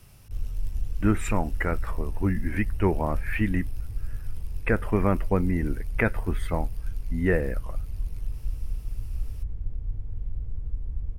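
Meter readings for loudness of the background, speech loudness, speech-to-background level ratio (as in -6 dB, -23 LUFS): -36.5 LUFS, -28.0 LUFS, 8.5 dB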